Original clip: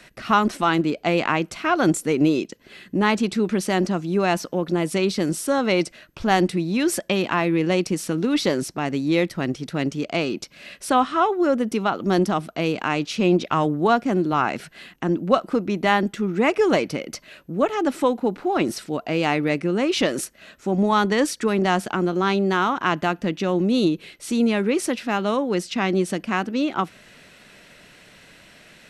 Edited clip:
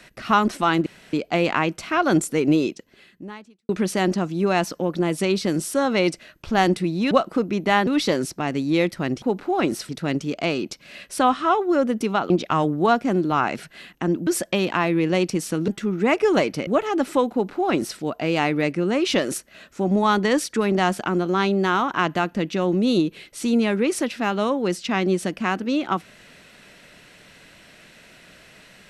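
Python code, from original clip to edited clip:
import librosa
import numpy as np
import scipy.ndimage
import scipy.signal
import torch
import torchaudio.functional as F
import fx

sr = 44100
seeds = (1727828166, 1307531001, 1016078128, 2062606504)

y = fx.edit(x, sr, fx.insert_room_tone(at_s=0.86, length_s=0.27),
    fx.fade_out_span(start_s=2.38, length_s=1.04, curve='qua'),
    fx.swap(start_s=6.84, length_s=1.41, other_s=15.28, other_length_s=0.76),
    fx.cut(start_s=12.01, length_s=1.3),
    fx.cut(start_s=17.03, length_s=0.51),
    fx.duplicate(start_s=18.19, length_s=0.67, to_s=9.6), tone=tone)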